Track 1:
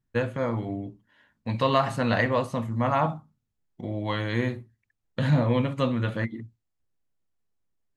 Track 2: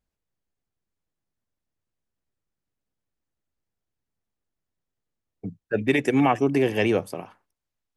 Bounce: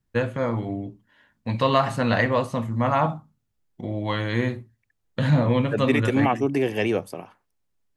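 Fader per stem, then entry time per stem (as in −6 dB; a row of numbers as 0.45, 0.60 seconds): +2.5, −1.5 decibels; 0.00, 0.00 seconds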